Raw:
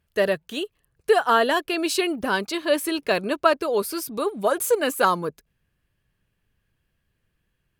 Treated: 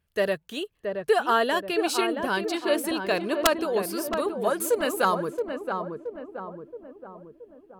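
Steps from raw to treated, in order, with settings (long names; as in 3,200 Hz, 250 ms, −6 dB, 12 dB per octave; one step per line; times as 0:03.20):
wrap-around overflow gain 6.5 dB
feedback echo with a low-pass in the loop 674 ms, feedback 55%, low-pass 1,100 Hz, level −4.5 dB
level −3.5 dB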